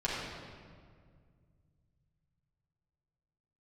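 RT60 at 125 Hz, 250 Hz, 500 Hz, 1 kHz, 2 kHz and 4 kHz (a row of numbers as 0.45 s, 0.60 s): 4.1 s, 2.8 s, 2.2 s, 1.8 s, 1.6 s, 1.3 s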